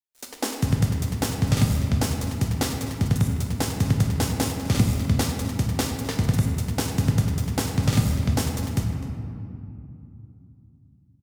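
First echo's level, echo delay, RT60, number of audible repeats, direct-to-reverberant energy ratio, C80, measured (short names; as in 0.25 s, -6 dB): -15.5 dB, 0.255 s, 2.8 s, 1, 2.0 dB, 4.5 dB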